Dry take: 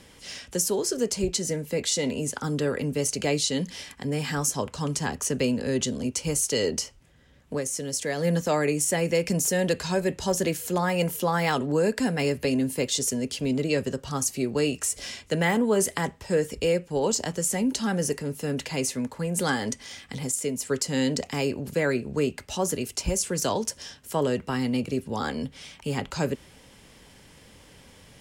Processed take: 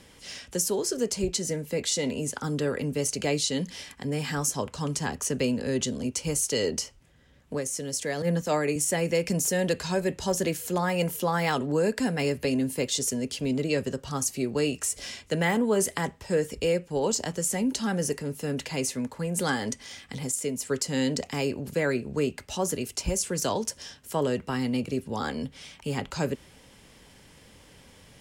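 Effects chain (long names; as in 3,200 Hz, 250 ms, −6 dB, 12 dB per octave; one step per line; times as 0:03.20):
0:08.22–0:08.76: multiband upward and downward expander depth 100%
level −1.5 dB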